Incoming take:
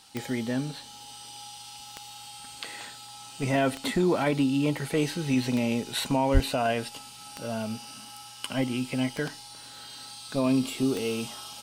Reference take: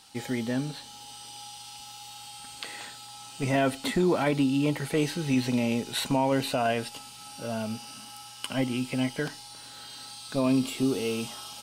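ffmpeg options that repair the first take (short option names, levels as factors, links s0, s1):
-filter_complex "[0:a]adeclick=t=4,asplit=3[s0][s1][s2];[s0]afade=t=out:st=6.33:d=0.02[s3];[s1]highpass=f=140:w=0.5412,highpass=f=140:w=1.3066,afade=t=in:st=6.33:d=0.02,afade=t=out:st=6.45:d=0.02[s4];[s2]afade=t=in:st=6.45:d=0.02[s5];[s3][s4][s5]amix=inputs=3:normalize=0"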